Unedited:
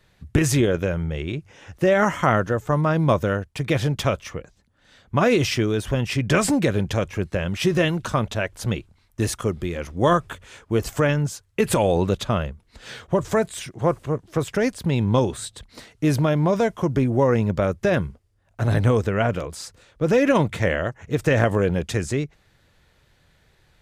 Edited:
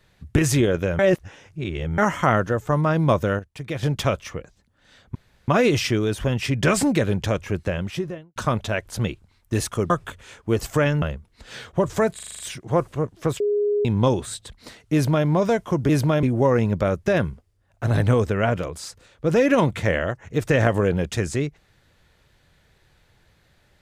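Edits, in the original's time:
0:00.99–0:01.98: reverse
0:03.39–0:03.83: clip gain −7.5 dB
0:05.15: splice in room tone 0.33 s
0:07.30–0:08.03: fade out and dull
0:09.57–0:10.13: remove
0:11.25–0:12.37: remove
0:13.50: stutter 0.04 s, 7 plays
0:14.51–0:14.96: beep over 413 Hz −18 dBFS
0:16.04–0:16.38: duplicate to 0:17.00

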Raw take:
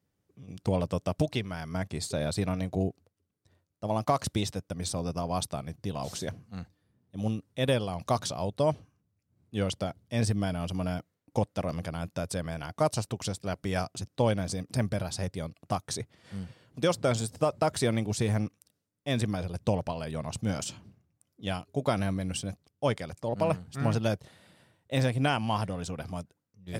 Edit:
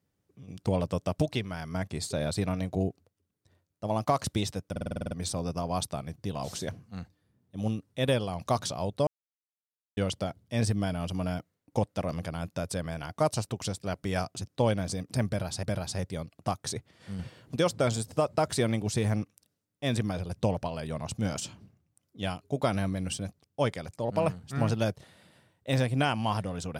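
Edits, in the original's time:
0:04.71: stutter 0.05 s, 9 plays
0:08.67–0:09.57: silence
0:14.87–0:15.23: repeat, 2 plays
0:16.43–0:16.80: clip gain +6 dB

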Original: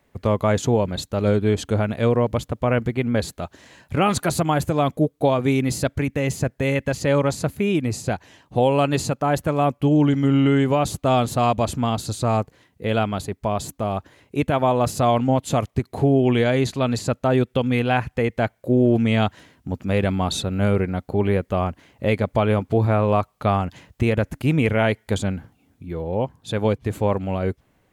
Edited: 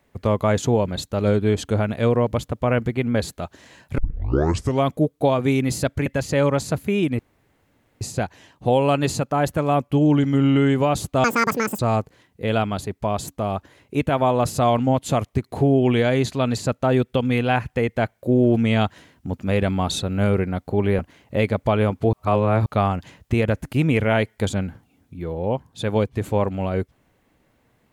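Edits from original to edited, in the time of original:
0:03.98: tape start 0.88 s
0:06.06–0:06.78: remove
0:07.91: splice in room tone 0.82 s
0:11.14–0:12.20: play speed 193%
0:21.40–0:21.68: remove
0:22.82–0:23.35: reverse

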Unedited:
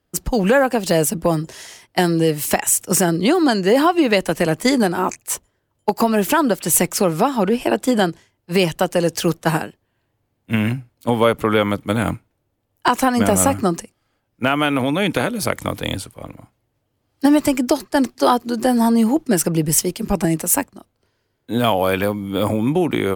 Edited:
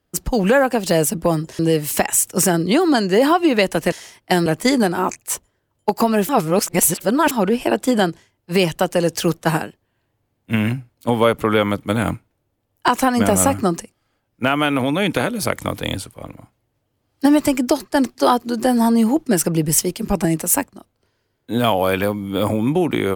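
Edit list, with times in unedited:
0:01.59–0:02.13: move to 0:04.46
0:06.29–0:07.31: reverse

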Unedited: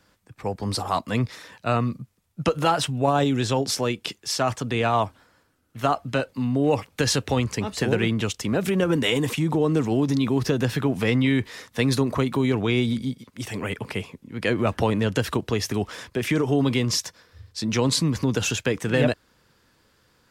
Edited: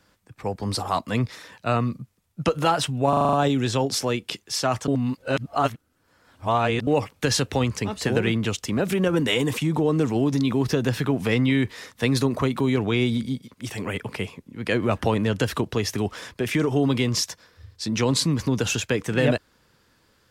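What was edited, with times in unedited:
0:03.09: stutter 0.04 s, 7 plays
0:04.64–0:06.63: reverse

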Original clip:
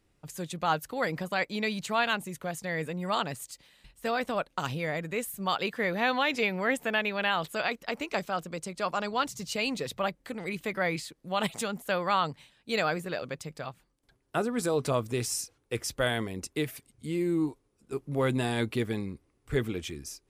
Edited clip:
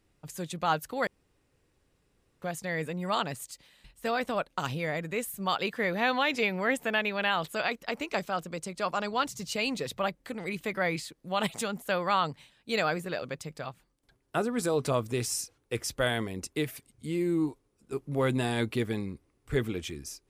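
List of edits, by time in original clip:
0:01.07–0:02.42: fill with room tone

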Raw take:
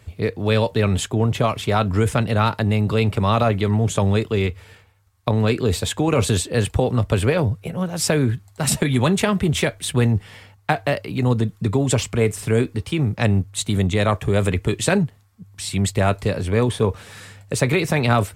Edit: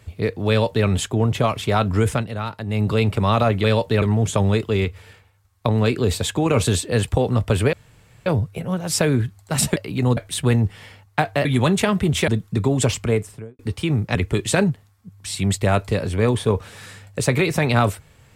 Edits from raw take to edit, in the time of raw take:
0:00.49–0:00.87: duplicate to 0:03.64
0:02.12–0:02.82: duck −9 dB, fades 0.15 s
0:07.35: splice in room tone 0.53 s
0:08.85–0:09.68: swap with 0:10.96–0:11.37
0:12.09–0:12.68: fade out and dull
0:13.24–0:14.49: remove

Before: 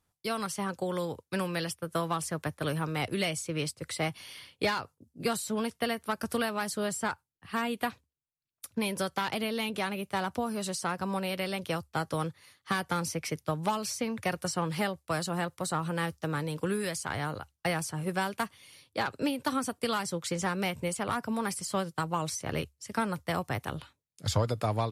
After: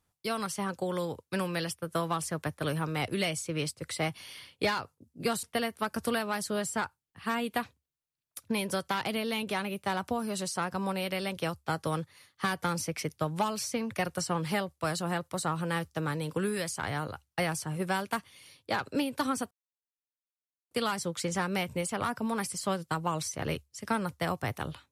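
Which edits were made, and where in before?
0:05.43–0:05.70: remove
0:19.78: splice in silence 1.20 s

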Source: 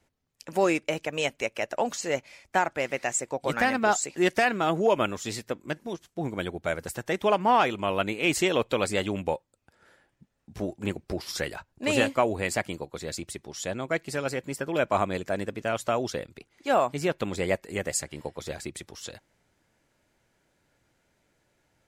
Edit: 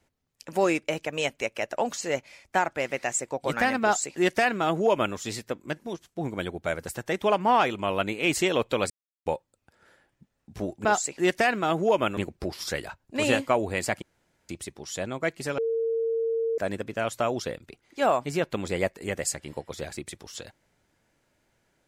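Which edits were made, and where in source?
0:03.83–0:05.15: duplicate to 0:10.85
0:08.90–0:09.26: silence
0:12.70–0:13.17: fill with room tone
0:14.26–0:15.26: beep over 455 Hz −23.5 dBFS

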